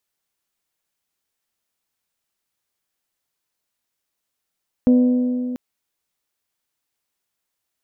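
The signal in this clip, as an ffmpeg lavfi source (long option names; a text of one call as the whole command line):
ffmpeg -f lavfi -i "aevalsrc='0.335*pow(10,-3*t/2.79)*sin(2*PI*249*t)+0.0944*pow(10,-3*t/2.266)*sin(2*PI*498*t)+0.0266*pow(10,-3*t/2.146)*sin(2*PI*597.6*t)+0.0075*pow(10,-3*t/2.007)*sin(2*PI*747*t)+0.00211*pow(10,-3*t/1.841)*sin(2*PI*996*t)':duration=0.69:sample_rate=44100" out.wav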